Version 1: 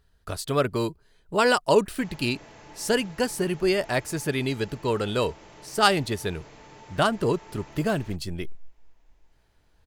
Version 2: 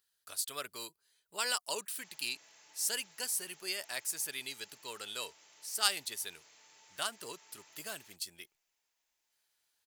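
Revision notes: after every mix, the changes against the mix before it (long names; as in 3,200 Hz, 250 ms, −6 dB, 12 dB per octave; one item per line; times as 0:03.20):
master: add first difference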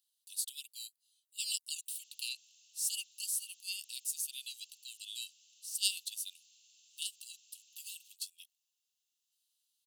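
master: add Chebyshev high-pass with heavy ripple 2,700 Hz, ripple 3 dB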